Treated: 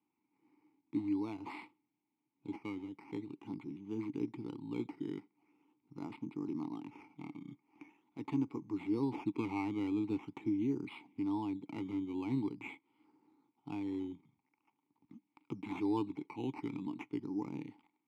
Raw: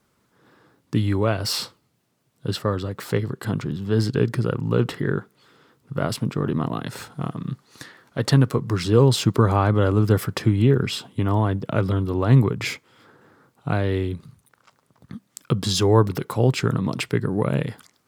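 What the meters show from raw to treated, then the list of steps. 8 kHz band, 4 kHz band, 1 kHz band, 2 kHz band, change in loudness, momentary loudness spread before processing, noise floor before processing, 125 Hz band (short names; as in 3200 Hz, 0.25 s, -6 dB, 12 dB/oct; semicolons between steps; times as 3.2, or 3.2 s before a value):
under -35 dB, under -25 dB, -18.0 dB, -20.0 dB, -17.5 dB, 13 LU, -67 dBFS, -28.0 dB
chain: decimation with a swept rate 10×, swing 60% 0.44 Hz; vowel filter u; gain -5.5 dB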